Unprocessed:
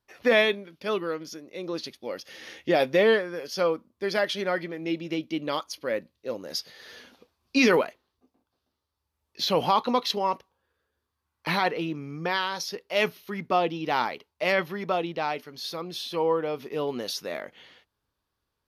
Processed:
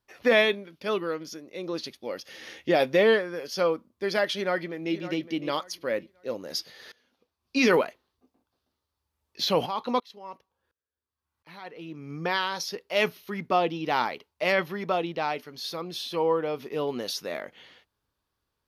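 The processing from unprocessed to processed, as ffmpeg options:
-filter_complex "[0:a]asplit=2[a][b];[b]afade=t=in:st=4.34:d=0.01,afade=t=out:st=4.94:d=0.01,aecho=0:1:560|1120|1680:0.223872|0.055968|0.013992[c];[a][c]amix=inputs=2:normalize=0,asplit=3[d][e][f];[d]afade=t=out:st=9.65:d=0.02[g];[e]aeval=exprs='val(0)*pow(10,-25*if(lt(mod(-1.4*n/s,1),2*abs(-1.4)/1000),1-mod(-1.4*n/s,1)/(2*abs(-1.4)/1000),(mod(-1.4*n/s,1)-2*abs(-1.4)/1000)/(1-2*abs(-1.4)/1000))/20)':c=same,afade=t=in:st=9.65:d=0.02,afade=t=out:st=12.09:d=0.02[h];[f]afade=t=in:st=12.09:d=0.02[i];[g][h][i]amix=inputs=3:normalize=0,asplit=2[j][k];[j]atrim=end=6.92,asetpts=PTS-STARTPTS,afade=t=out:st=6.916:d=0.004:c=hsin:silence=0.0841395[l];[k]atrim=start=6.92,asetpts=PTS-STARTPTS,afade=t=in:d=0.8:c=qua:silence=0.0841395[m];[l][m]concat=n=2:v=0:a=1"

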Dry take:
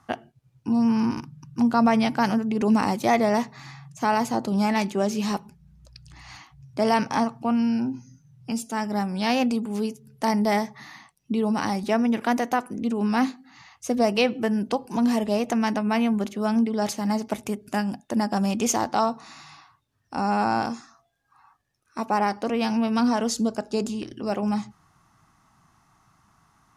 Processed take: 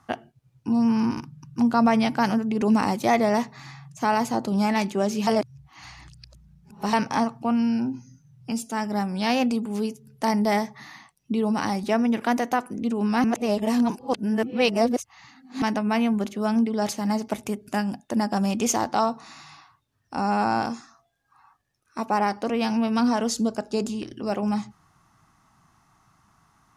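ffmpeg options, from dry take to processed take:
-filter_complex "[0:a]asplit=5[a][b][c][d][e];[a]atrim=end=5.272[f];[b]atrim=start=5.268:end=6.932,asetpts=PTS-STARTPTS,areverse[g];[c]atrim=start=6.928:end=13.242[h];[d]atrim=start=13.238:end=15.622,asetpts=PTS-STARTPTS,areverse[i];[e]atrim=start=15.618[j];[f][g]acrossfade=d=0.004:c1=hsin:c2=hsin[k];[k][h]acrossfade=d=0.004:c1=hsin:c2=hsin[l];[l][i]acrossfade=d=0.004:c1=hsin:c2=hsin[m];[m][j]acrossfade=d=0.004:c1=hsin:c2=hsin"

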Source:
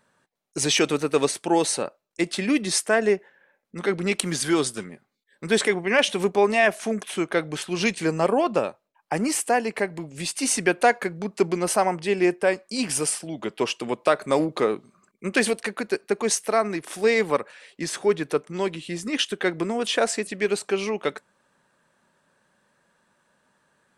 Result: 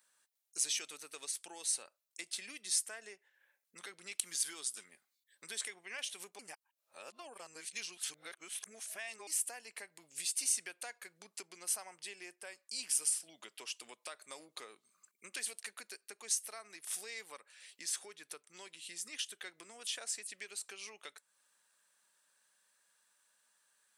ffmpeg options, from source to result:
-filter_complex "[0:a]asplit=3[a][b][c];[a]atrim=end=6.392[d];[b]atrim=start=6.388:end=9.272,asetpts=PTS-STARTPTS,areverse[e];[c]atrim=start=9.268[f];[d][e]acrossfade=d=0.004:c1=hsin:c2=hsin[g];[g][f]acrossfade=d=0.004:c1=hsin:c2=hsin,acompressor=threshold=-36dB:ratio=2.5,aderivative,volume=2dB"

